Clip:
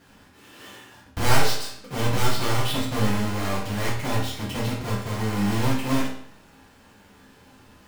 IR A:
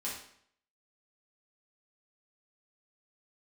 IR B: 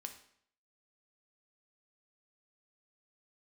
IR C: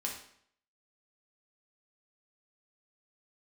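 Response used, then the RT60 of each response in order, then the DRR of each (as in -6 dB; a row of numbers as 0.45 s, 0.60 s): A; 0.65 s, 0.65 s, 0.65 s; -7.0 dB, 5.0 dB, -1.5 dB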